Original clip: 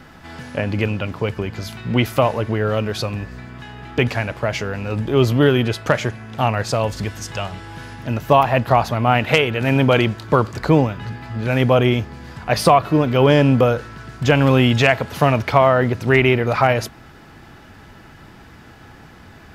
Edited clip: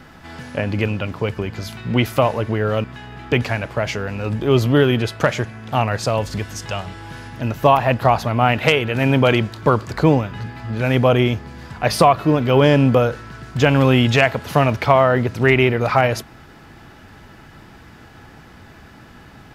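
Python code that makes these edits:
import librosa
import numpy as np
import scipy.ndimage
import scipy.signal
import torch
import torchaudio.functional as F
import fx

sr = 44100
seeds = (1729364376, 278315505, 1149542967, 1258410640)

y = fx.edit(x, sr, fx.cut(start_s=2.84, length_s=0.66), tone=tone)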